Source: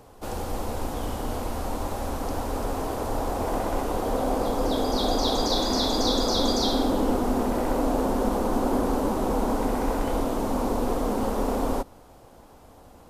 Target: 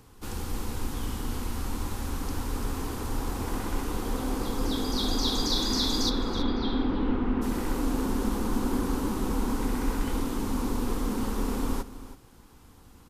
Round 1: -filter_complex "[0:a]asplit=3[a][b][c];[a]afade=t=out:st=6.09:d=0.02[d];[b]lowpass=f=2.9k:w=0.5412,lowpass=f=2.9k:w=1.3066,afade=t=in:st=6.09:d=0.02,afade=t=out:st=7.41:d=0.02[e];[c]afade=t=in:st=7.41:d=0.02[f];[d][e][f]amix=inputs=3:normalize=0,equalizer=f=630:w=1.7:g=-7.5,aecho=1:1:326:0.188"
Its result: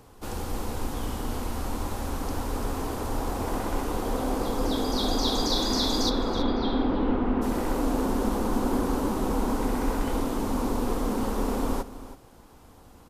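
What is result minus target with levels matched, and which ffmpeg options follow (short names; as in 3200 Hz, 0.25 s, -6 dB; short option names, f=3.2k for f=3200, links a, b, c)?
500 Hz band +3.5 dB
-filter_complex "[0:a]asplit=3[a][b][c];[a]afade=t=out:st=6.09:d=0.02[d];[b]lowpass=f=2.9k:w=0.5412,lowpass=f=2.9k:w=1.3066,afade=t=in:st=6.09:d=0.02,afade=t=out:st=7.41:d=0.02[e];[c]afade=t=in:st=7.41:d=0.02[f];[d][e][f]amix=inputs=3:normalize=0,equalizer=f=630:w=1.7:g=-18.5,aecho=1:1:326:0.188"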